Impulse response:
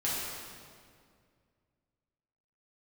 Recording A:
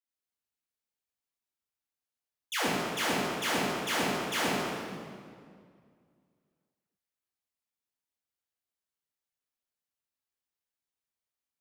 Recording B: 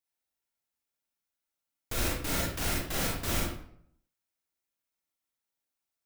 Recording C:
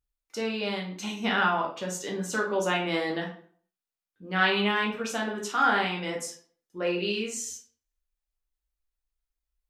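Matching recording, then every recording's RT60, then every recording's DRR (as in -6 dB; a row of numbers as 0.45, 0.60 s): A; 2.1, 0.65, 0.50 s; -8.5, -4.0, -1.5 dB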